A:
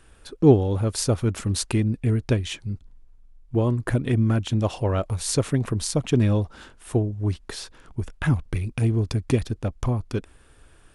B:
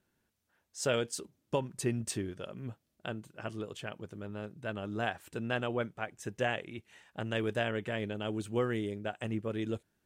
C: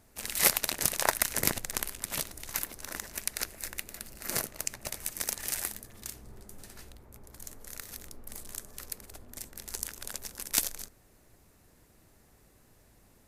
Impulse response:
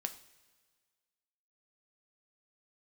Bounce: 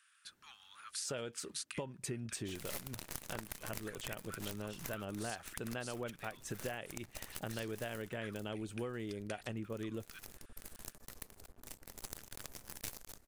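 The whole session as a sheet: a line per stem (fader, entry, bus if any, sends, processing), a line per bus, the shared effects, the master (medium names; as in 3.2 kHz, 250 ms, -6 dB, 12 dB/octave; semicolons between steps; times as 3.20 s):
-8.5 dB, 0.00 s, no send, steep high-pass 1.2 kHz 48 dB/octave
+3.0 dB, 0.25 s, no send, none
-4.5 dB, 2.30 s, no send, half-wave rectifier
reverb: none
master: compression 6:1, threshold -39 dBFS, peak gain reduction 15.5 dB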